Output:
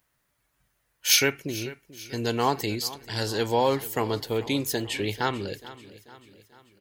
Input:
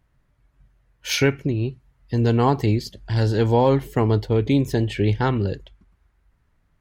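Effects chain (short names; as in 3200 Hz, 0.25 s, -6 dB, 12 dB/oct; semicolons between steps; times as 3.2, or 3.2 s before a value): RIAA curve recording; feedback echo 0.439 s, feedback 52%, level -17.5 dB; gain -2.5 dB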